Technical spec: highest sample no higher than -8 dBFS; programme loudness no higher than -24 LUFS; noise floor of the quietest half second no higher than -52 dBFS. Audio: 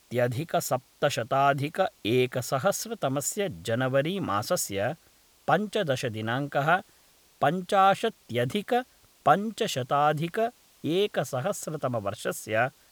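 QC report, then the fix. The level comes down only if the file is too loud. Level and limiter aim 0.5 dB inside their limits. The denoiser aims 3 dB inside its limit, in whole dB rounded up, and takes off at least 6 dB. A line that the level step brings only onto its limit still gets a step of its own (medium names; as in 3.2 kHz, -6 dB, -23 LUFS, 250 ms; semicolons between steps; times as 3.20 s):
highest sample -7.5 dBFS: fail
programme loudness -27.5 LUFS: pass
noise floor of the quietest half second -61 dBFS: pass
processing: peak limiter -8.5 dBFS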